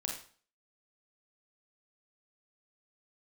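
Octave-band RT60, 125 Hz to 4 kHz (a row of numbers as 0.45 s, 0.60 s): 0.45 s, 0.45 s, 0.45 s, 0.45 s, 0.40 s, 0.40 s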